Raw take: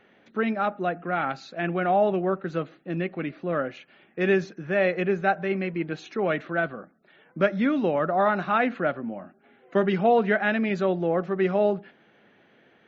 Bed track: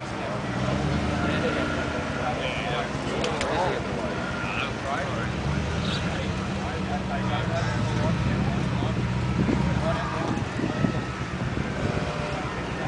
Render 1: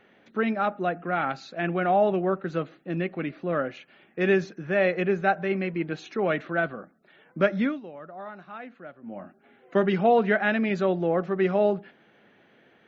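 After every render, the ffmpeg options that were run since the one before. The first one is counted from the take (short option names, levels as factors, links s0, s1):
-filter_complex "[0:a]asplit=3[s0][s1][s2];[s0]atrim=end=7.8,asetpts=PTS-STARTPTS,afade=t=out:st=7.61:d=0.19:silence=0.133352[s3];[s1]atrim=start=7.8:end=9.01,asetpts=PTS-STARTPTS,volume=0.133[s4];[s2]atrim=start=9.01,asetpts=PTS-STARTPTS,afade=t=in:d=0.19:silence=0.133352[s5];[s3][s4][s5]concat=n=3:v=0:a=1"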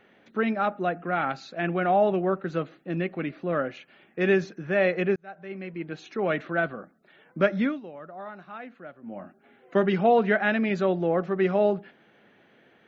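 -filter_complex "[0:a]asplit=2[s0][s1];[s0]atrim=end=5.16,asetpts=PTS-STARTPTS,afade=t=out:st=5.156:d=0.004:c=hsin[s2];[s1]atrim=start=5.16,asetpts=PTS-STARTPTS,afade=t=in:d=1.24[s3];[s2][s3]concat=n=2:v=0:a=1"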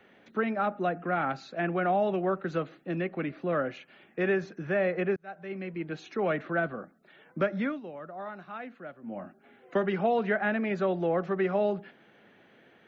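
-filter_complex "[0:a]acrossover=split=200|420|2100[s0][s1][s2][s3];[s0]acompressor=threshold=0.0126:ratio=4[s4];[s1]acompressor=threshold=0.0178:ratio=4[s5];[s2]acompressor=threshold=0.0501:ratio=4[s6];[s3]acompressor=threshold=0.00398:ratio=4[s7];[s4][s5][s6][s7]amix=inputs=4:normalize=0"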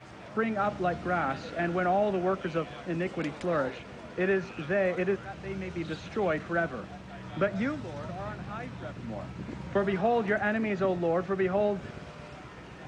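-filter_complex "[1:a]volume=0.158[s0];[0:a][s0]amix=inputs=2:normalize=0"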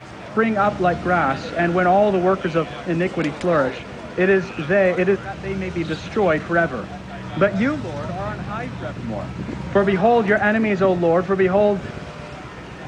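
-af "volume=3.35"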